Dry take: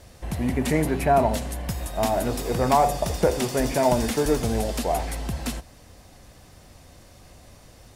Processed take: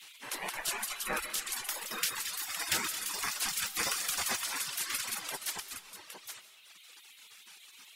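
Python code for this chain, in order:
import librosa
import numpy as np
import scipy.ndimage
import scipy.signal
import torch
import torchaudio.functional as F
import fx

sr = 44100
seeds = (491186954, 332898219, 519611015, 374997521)

y = fx.echo_multitap(x, sr, ms=(221, 223, 813), db=(-9.0, -11.0, -8.0))
y = fx.spec_gate(y, sr, threshold_db=-25, keep='weak')
y = fx.dmg_noise_band(y, sr, seeds[0], low_hz=2100.0, high_hz=4100.0, level_db=-59.0)
y = fx.dereverb_blind(y, sr, rt60_s=1.7)
y = fx.rev_freeverb(y, sr, rt60_s=0.88, hf_ratio=0.85, predelay_ms=110, drr_db=12.5)
y = y * 10.0 ** (4.0 / 20.0)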